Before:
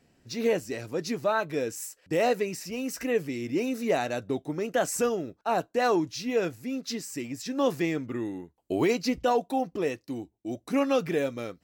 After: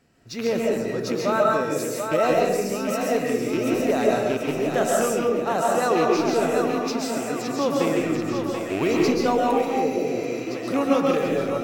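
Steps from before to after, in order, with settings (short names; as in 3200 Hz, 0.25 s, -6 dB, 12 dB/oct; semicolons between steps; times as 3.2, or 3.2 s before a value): rattling part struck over -31 dBFS, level -22 dBFS; on a send: split-band echo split 450 Hz, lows 0.171 s, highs 0.735 s, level -6 dB; on the sum: spectral repair 9.68–10.35, 730–10000 Hz after; bell 1300 Hz +6 dB 0.53 oct; digital reverb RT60 0.87 s, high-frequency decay 0.5×, pre-delay 95 ms, DRR -2 dB; dynamic EQ 2000 Hz, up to -4 dB, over -36 dBFS, Q 0.87; gain +1 dB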